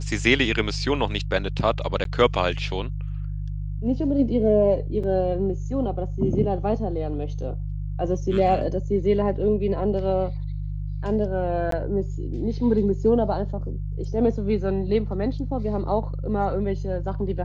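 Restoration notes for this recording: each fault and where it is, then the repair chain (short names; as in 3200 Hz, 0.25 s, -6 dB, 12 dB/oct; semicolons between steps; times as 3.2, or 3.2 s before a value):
hum 50 Hz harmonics 3 -29 dBFS
2.04–2.05 gap 12 ms
5.03–5.04 gap 5.3 ms
11.71–11.72 gap 13 ms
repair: de-hum 50 Hz, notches 3; interpolate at 2.04, 12 ms; interpolate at 5.03, 5.3 ms; interpolate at 11.71, 13 ms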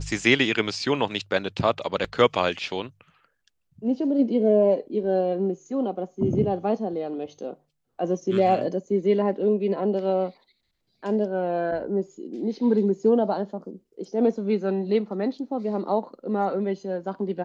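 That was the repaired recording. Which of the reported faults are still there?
none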